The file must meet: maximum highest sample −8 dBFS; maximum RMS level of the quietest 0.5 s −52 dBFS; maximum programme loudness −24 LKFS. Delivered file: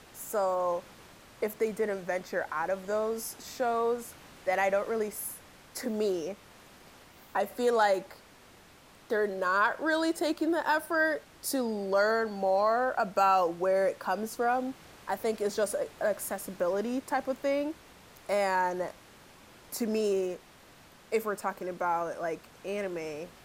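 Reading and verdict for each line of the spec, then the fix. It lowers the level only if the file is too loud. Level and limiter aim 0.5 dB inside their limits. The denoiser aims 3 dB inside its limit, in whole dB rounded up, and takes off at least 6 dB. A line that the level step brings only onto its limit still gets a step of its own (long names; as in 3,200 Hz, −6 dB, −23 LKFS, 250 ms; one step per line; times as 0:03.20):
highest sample −13.0 dBFS: in spec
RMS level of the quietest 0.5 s −56 dBFS: in spec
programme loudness −30.5 LKFS: in spec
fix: no processing needed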